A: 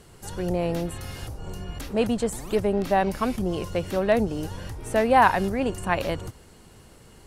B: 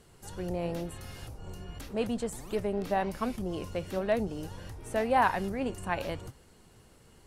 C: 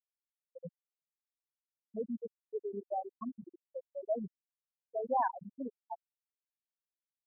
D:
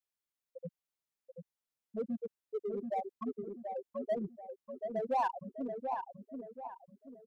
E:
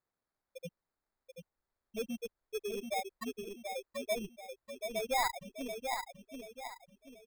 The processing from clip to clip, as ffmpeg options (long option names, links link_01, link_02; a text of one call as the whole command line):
ffmpeg -i in.wav -af "flanger=delay=3.9:depth=9.6:regen=83:speed=0.92:shape=triangular,volume=-3dB" out.wav
ffmpeg -i in.wav -af "afftfilt=real='re*gte(hypot(re,im),0.224)':imag='im*gte(hypot(re,im),0.224)':win_size=1024:overlap=0.75,volume=-5dB" out.wav
ffmpeg -i in.wav -filter_complex "[0:a]asplit=2[link_01][link_02];[link_02]volume=35.5dB,asoftclip=hard,volume=-35.5dB,volume=-4dB[link_03];[link_01][link_03]amix=inputs=2:normalize=0,asplit=2[link_04][link_05];[link_05]adelay=733,lowpass=frequency=1400:poles=1,volume=-5dB,asplit=2[link_06][link_07];[link_07]adelay=733,lowpass=frequency=1400:poles=1,volume=0.4,asplit=2[link_08][link_09];[link_09]adelay=733,lowpass=frequency=1400:poles=1,volume=0.4,asplit=2[link_10][link_11];[link_11]adelay=733,lowpass=frequency=1400:poles=1,volume=0.4,asplit=2[link_12][link_13];[link_13]adelay=733,lowpass=frequency=1400:poles=1,volume=0.4[link_14];[link_04][link_06][link_08][link_10][link_12][link_14]amix=inputs=6:normalize=0,volume=-2.5dB" out.wav
ffmpeg -i in.wav -af "acrusher=samples=15:mix=1:aa=0.000001,asubboost=boost=9.5:cutoff=58" out.wav